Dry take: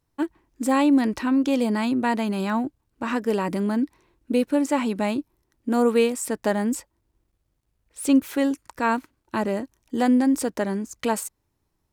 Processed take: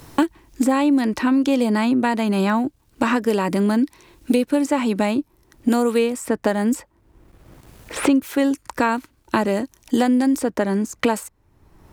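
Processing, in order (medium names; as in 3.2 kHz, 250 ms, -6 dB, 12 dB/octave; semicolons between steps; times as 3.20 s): three bands compressed up and down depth 100%; trim +3 dB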